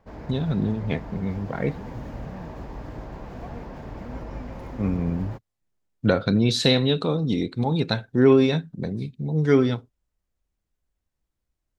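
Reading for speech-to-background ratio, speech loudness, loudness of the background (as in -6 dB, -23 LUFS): 14.5 dB, -23.5 LUFS, -38.0 LUFS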